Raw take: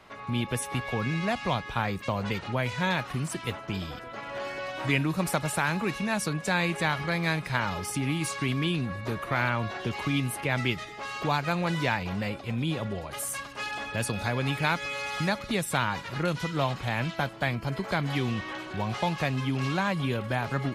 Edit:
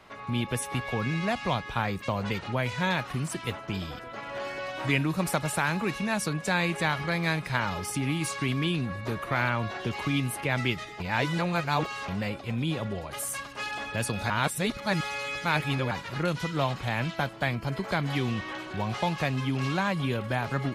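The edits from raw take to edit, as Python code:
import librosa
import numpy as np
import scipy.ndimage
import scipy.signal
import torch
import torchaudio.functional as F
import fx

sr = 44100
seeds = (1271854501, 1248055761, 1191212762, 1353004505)

y = fx.edit(x, sr, fx.reverse_span(start_s=11.0, length_s=1.08),
    fx.reverse_span(start_s=14.3, length_s=1.61), tone=tone)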